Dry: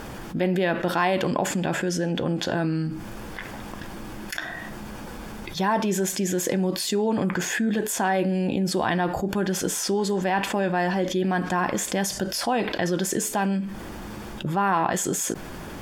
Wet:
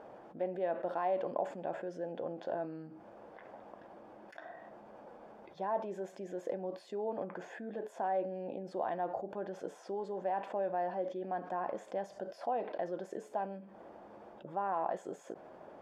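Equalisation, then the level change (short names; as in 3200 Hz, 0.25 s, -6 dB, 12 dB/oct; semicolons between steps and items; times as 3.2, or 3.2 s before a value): band-pass 620 Hz, Q 2.5; -6.0 dB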